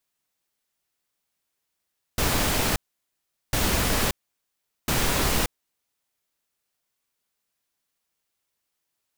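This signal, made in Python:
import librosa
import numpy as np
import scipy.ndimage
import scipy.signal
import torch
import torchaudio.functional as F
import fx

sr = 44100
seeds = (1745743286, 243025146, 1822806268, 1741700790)

y = fx.noise_burst(sr, seeds[0], colour='pink', on_s=0.58, off_s=0.77, bursts=3, level_db=-23.0)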